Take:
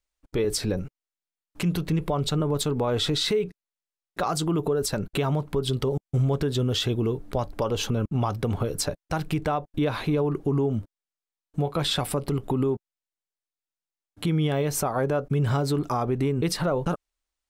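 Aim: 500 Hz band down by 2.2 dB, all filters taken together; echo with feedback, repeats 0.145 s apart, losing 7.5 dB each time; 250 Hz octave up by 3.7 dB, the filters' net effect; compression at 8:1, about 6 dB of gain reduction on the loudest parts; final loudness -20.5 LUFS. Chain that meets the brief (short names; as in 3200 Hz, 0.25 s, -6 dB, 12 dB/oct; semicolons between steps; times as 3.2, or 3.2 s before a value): bell 250 Hz +6.5 dB; bell 500 Hz -5 dB; compressor 8:1, threshold -24 dBFS; feedback echo 0.145 s, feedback 42%, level -7.5 dB; gain +8.5 dB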